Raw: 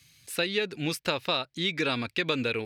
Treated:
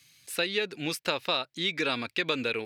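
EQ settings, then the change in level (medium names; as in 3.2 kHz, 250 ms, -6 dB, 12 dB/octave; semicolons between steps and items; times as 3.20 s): high-pass 260 Hz 6 dB/octave; 0.0 dB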